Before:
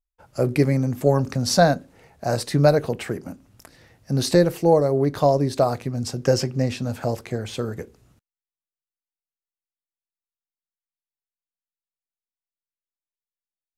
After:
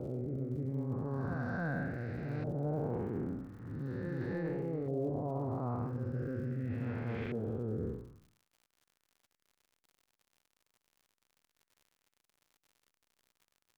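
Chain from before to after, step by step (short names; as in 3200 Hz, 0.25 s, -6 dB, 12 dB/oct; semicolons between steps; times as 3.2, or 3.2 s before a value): time blur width 0.269 s; bell 620 Hz -11 dB 0.67 oct; on a send: reverse echo 0.299 s -5.5 dB; on the sum: rotary speaker horn 0.65 Hz; high shelf 3600 Hz -9.5 dB; reverse; compressor 12:1, threshold -40 dBFS, peak gain reduction 22 dB; reverse; LFO low-pass saw up 0.41 Hz 650–2400 Hz; crackle 89/s -60 dBFS; gain +6 dB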